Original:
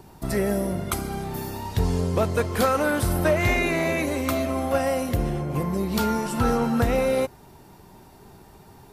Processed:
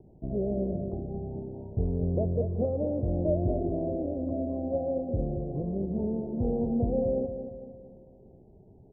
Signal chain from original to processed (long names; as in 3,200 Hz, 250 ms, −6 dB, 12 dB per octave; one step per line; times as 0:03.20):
loose part that buzzes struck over −23 dBFS, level −16 dBFS
Butterworth low-pass 670 Hz 48 dB per octave
on a send: repeating echo 228 ms, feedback 47%, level −9 dB
on the sum: level −5.5 dB